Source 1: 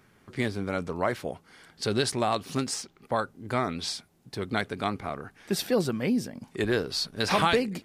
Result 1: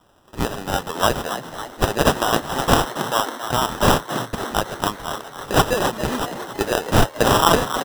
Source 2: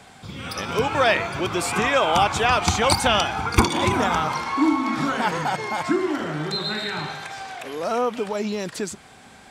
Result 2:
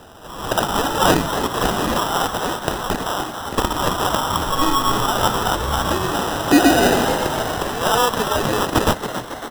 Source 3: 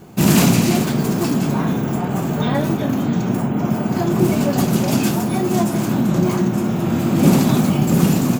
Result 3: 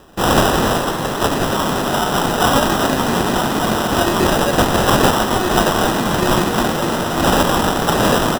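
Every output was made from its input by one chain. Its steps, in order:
frequency weighting ITU-R 468; level rider gain up to 10.5 dB; sample-and-hold 20×; on a send: frequency-shifting echo 276 ms, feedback 55%, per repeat +110 Hz, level -10 dB; on the sum: peak normalisation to -1.5 dBFS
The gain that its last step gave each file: +1.0 dB, 0.0 dB, +1.0 dB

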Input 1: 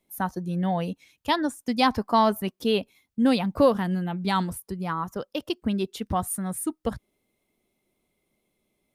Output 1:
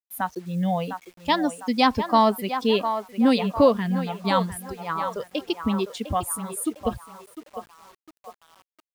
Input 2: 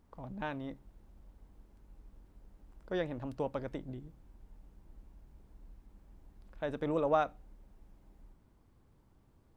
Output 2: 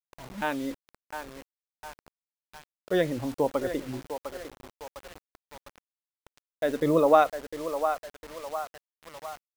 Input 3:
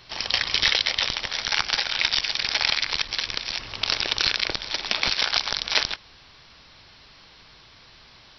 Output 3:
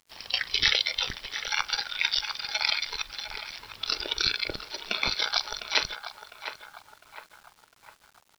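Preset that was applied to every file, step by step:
spectral noise reduction 12 dB; band-passed feedback delay 704 ms, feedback 53%, band-pass 1 kHz, level -7 dB; bit crusher 9-bit; peak normalisation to -6 dBFS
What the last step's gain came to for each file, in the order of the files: +2.0 dB, +10.0 dB, -1.5 dB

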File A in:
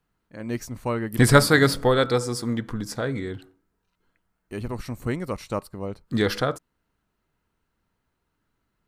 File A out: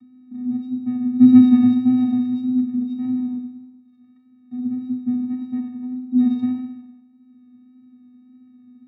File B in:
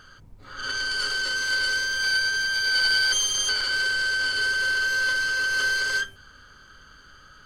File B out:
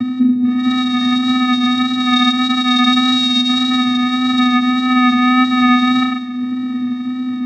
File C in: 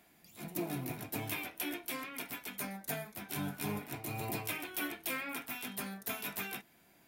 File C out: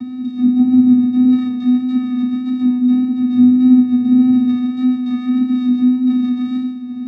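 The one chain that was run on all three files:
upward compressor, threshold -31 dBFS; Schroeder reverb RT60 1.1 s, combs from 28 ms, DRR 2.5 dB; vocoder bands 4, square 251 Hz; pitch-class resonator A#, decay 0.13 s; vibrato 1.7 Hz 18 cents; peak normalisation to -2 dBFS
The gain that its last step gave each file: +11.0 dB, +29.5 dB, +31.0 dB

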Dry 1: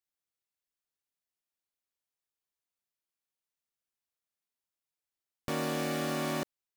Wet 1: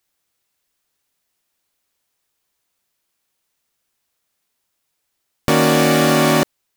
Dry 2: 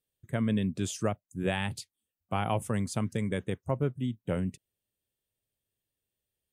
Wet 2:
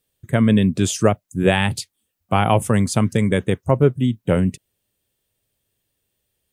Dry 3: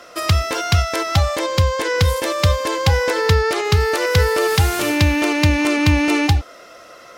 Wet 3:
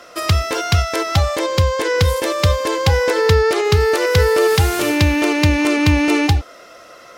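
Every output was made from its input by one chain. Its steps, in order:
dynamic bell 410 Hz, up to +5 dB, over -33 dBFS, Q 2.6; peak normalisation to -2 dBFS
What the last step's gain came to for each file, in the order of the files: +18.5 dB, +13.0 dB, +0.5 dB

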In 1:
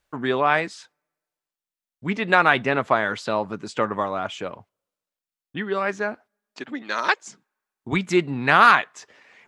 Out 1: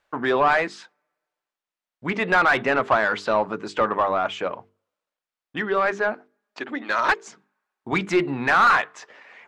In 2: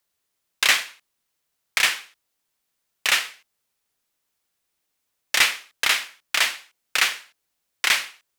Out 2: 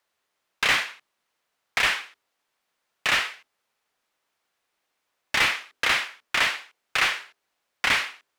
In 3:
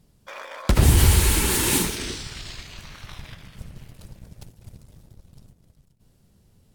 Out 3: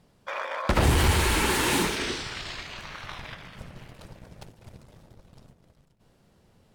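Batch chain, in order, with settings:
saturation -8 dBFS; hum notches 50/100/150/200/250/300/350/400/450 Hz; overdrive pedal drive 15 dB, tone 1.4 kHz, clips at -7.5 dBFS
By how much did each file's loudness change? -0.5 LU, -2.5 LU, -6.0 LU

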